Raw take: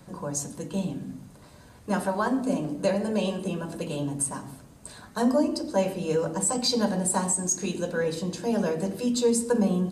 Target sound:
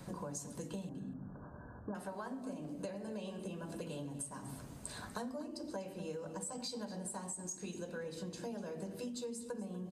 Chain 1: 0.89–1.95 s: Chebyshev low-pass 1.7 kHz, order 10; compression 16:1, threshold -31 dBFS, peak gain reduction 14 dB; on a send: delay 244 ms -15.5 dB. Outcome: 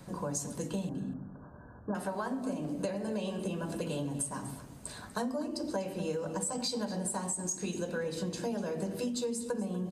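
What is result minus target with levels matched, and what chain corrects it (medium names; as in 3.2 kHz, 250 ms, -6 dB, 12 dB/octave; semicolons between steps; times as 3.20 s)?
compression: peak gain reduction -8.5 dB
0.89–1.95 s: Chebyshev low-pass 1.7 kHz, order 10; compression 16:1, threshold -40 dBFS, peak gain reduction 22.5 dB; on a send: delay 244 ms -15.5 dB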